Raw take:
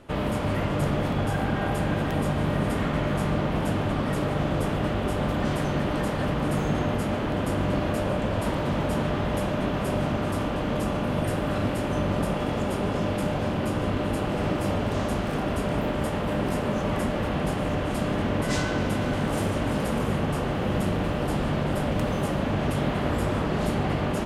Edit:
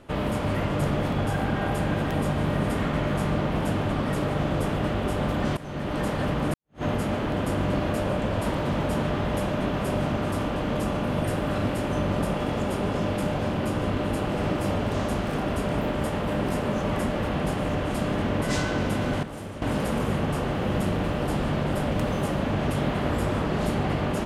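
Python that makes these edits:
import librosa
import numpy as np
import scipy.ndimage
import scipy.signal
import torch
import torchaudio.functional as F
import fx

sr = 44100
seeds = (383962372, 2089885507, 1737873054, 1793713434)

y = fx.edit(x, sr, fx.fade_in_from(start_s=5.57, length_s=0.47, floor_db=-17.0),
    fx.fade_in_span(start_s=6.54, length_s=0.29, curve='exp'),
    fx.clip_gain(start_s=19.23, length_s=0.39, db=-10.5), tone=tone)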